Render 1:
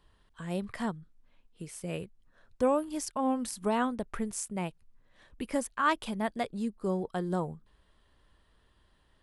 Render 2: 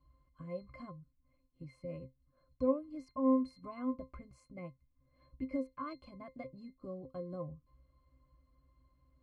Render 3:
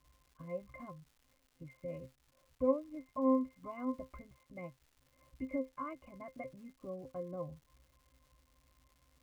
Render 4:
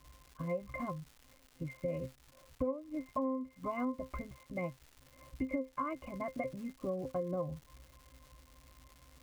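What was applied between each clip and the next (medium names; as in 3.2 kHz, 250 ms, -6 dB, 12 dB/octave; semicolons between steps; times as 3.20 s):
in parallel at +1.5 dB: compression, threshold -39 dBFS, peak gain reduction 16.5 dB; on the sum: pitch-class resonator C, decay 0.16 s
rippled Chebyshev low-pass 3 kHz, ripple 6 dB; crackle 360 per s -61 dBFS; trim +3.5 dB
compression 12:1, threshold -42 dBFS, peak gain reduction 18 dB; trim +10 dB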